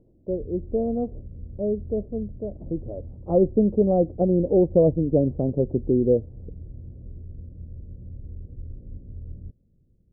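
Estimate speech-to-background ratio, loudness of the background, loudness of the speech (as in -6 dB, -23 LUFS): 18.0 dB, -41.5 LUFS, -23.5 LUFS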